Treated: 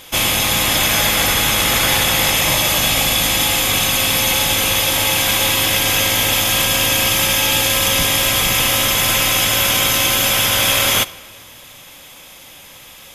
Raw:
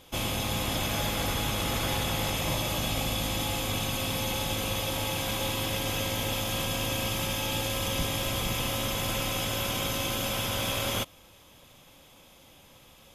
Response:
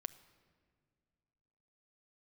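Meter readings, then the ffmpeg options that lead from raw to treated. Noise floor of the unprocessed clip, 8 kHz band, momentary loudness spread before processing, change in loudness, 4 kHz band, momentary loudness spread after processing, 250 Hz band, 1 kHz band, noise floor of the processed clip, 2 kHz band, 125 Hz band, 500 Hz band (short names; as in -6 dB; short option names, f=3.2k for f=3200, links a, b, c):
-55 dBFS, +18.0 dB, 1 LU, +15.5 dB, +16.0 dB, 1 LU, +8.0 dB, +12.5 dB, -40 dBFS, +17.0 dB, +7.0 dB, +10.0 dB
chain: -filter_complex "[0:a]equalizer=f=1.9k:t=o:w=0.74:g=5.5,asplit=2[a][b];[1:a]atrim=start_sample=2205,lowshelf=f=370:g=-11.5,highshelf=f=4.2k:g=8[c];[b][c]afir=irnorm=-1:irlink=0,volume=10.5dB[d];[a][d]amix=inputs=2:normalize=0,volume=2.5dB"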